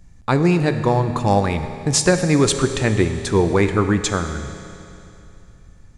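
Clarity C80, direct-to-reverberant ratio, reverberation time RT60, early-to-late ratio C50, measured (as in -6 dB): 9.5 dB, 7.5 dB, 2.8 s, 9.0 dB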